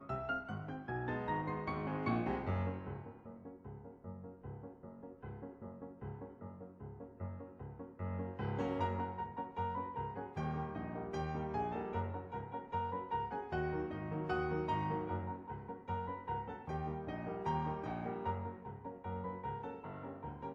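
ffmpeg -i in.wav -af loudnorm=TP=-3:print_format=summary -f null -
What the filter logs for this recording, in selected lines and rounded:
Input Integrated:    -41.7 LUFS
Input True Peak:     -22.5 dBTP
Input LRA:            10.4 LU
Input Threshold:     -51.9 LUFS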